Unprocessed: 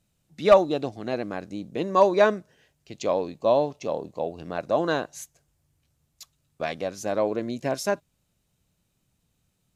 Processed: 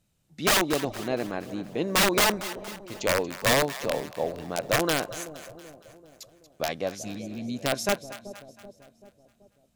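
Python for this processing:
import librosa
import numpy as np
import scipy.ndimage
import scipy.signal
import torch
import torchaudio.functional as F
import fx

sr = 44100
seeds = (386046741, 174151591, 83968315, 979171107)

y = fx.spec_repair(x, sr, seeds[0], start_s=7.07, length_s=0.46, low_hz=310.0, high_hz=2200.0, source='both')
y = (np.mod(10.0 ** (15.5 / 20.0) * y + 1.0, 2.0) - 1.0) / 10.0 ** (15.5 / 20.0)
y = fx.echo_split(y, sr, split_hz=720.0, low_ms=383, high_ms=233, feedback_pct=52, wet_db=-14)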